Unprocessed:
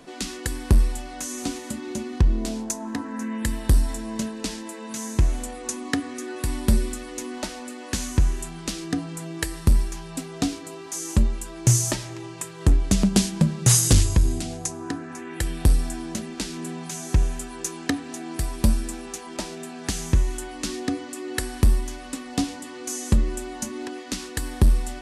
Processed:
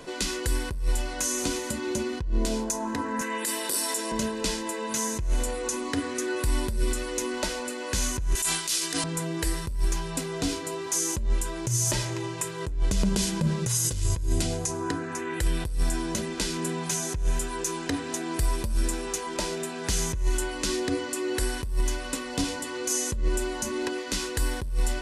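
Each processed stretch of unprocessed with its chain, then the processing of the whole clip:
3.21–4.12 s: high-pass 290 Hz 24 dB/octave + treble shelf 3.2 kHz +9 dB
8.35–9.04 s: tilt EQ +4.5 dB/octave + decay stretcher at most 110 dB/s
whole clip: comb 2 ms, depth 47%; compressor with a negative ratio -22 dBFS, ratio -1; peak limiter -16 dBFS

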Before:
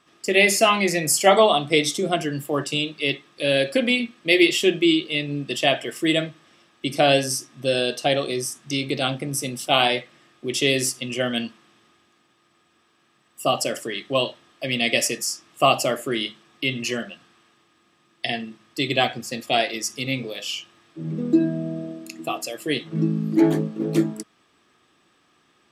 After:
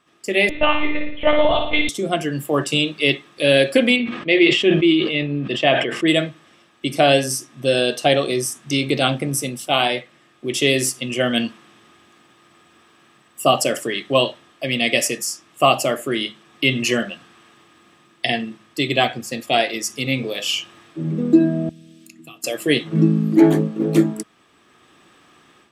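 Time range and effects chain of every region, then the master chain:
0.49–1.89 s: monotone LPC vocoder at 8 kHz 300 Hz + flutter echo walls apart 9.8 m, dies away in 0.64 s
3.96–6.08 s: low-pass 3.1 kHz + decay stretcher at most 57 dB/s
21.69–22.44 s: amplifier tone stack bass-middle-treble 6-0-2 + three bands compressed up and down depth 70%
whole clip: level rider; peaking EQ 4.9 kHz -4 dB 0.72 oct; trim -1 dB

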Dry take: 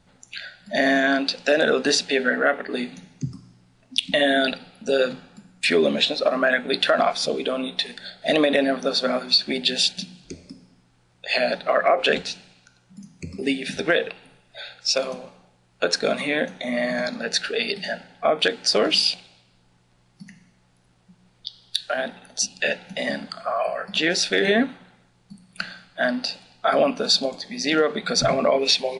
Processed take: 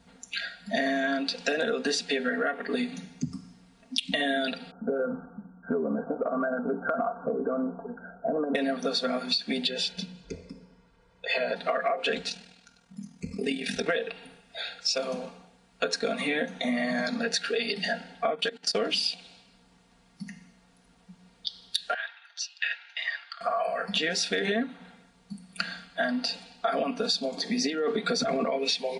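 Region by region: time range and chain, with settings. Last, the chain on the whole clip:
4.71–8.55 s: brick-wall FIR low-pass 1.6 kHz + compression 2:1, threshold -24 dBFS
9.67–11.56 s: low-pass 1.7 kHz 6 dB/octave + comb 2 ms, depth 61%
12.29–13.89 s: band-stop 290 Hz, Q 8.4 + AM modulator 40 Hz, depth 50%
18.35–18.75 s: comb 5 ms, depth 33% + level held to a coarse grid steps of 21 dB
21.94–23.41 s: high-pass 1.3 kHz 24 dB/octave + distance through air 230 m
27.37–28.44 s: high-pass 110 Hz + peaking EQ 350 Hz +10.5 dB 0.55 oct + compressor with a negative ratio -21 dBFS
whole clip: high-pass 41 Hz; comb 4.3 ms, depth 74%; compression 6:1, threshold -25 dBFS

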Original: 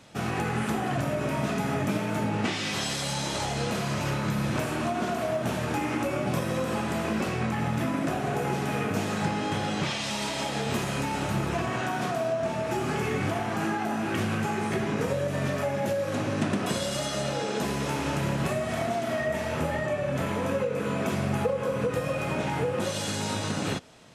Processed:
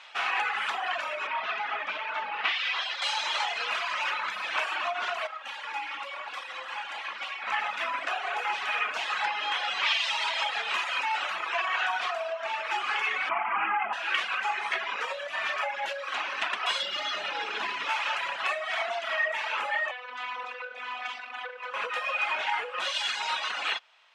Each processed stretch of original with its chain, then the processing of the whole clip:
1.27–3.02 s: self-modulated delay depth 0.082 ms + distance through air 150 m
5.27–7.47 s: comb filter that takes the minimum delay 3.6 ms + feedback comb 59 Hz, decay 0.66 s
13.29–13.93 s: steep low-pass 3 kHz 96 dB/octave + bass shelf 350 Hz +10 dB + comb 0.9 ms, depth 40%
16.82–17.90 s: median filter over 5 samples + resonant low shelf 440 Hz +7.5 dB, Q 1.5
19.91–21.74 s: overload inside the chain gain 28.5 dB + robot voice 249 Hz + distance through air 61 m
whole clip: Chebyshev band-pass 910–3000 Hz, order 2; reverb removal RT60 1.6 s; tilt EQ +3 dB/octave; trim +7 dB

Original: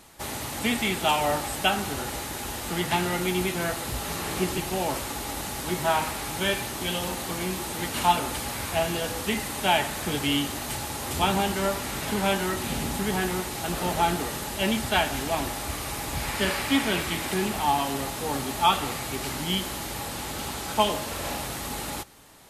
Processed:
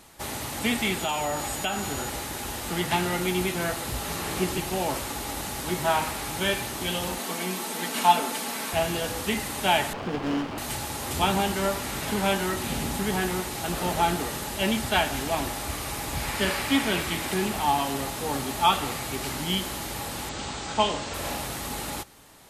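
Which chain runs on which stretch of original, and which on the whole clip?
0.98–2.08 s: compression 3:1, threshold -25 dBFS + whistle 6.9 kHz -39 dBFS
7.18–8.73 s: high-pass 190 Hz 24 dB/octave + comb 4.5 ms, depth 44%
9.93–10.58 s: one-bit delta coder 16 kbps, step -26 dBFS + high-pass 140 Hz + sliding maximum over 17 samples
20.29–21.14 s: elliptic low-pass 8 kHz + doubling 36 ms -11 dB
whole clip: none

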